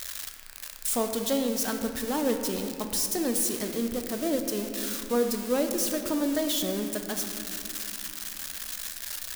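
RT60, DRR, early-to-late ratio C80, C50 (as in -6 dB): 2.6 s, 5.0 dB, 7.0 dB, 6.0 dB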